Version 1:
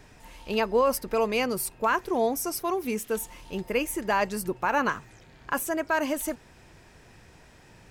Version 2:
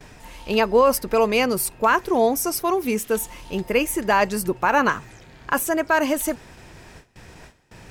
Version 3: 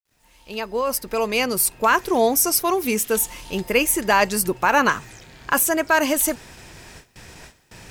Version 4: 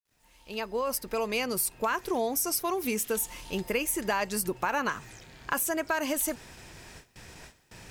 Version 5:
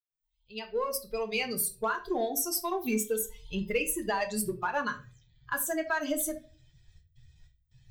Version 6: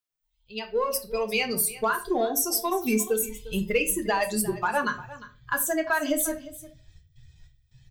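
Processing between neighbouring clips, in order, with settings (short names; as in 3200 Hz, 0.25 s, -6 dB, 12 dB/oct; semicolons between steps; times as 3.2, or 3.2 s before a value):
gate with hold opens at -43 dBFS; reverse; upward compressor, threshold -45 dBFS; reverse; gain +6.5 dB
opening faded in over 2.06 s; high shelf 2500 Hz +8 dB; bit-crush 11-bit
compressor 4:1, threshold -20 dBFS, peak gain reduction 7.5 dB; gain -5.5 dB
per-bin expansion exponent 2; in parallel at -11.5 dB: hard clip -32 dBFS, distortion -9 dB; on the sum: reverb RT60 0.35 s, pre-delay 4 ms, DRR 4.5 dB
echo 0.352 s -17 dB; gain +5 dB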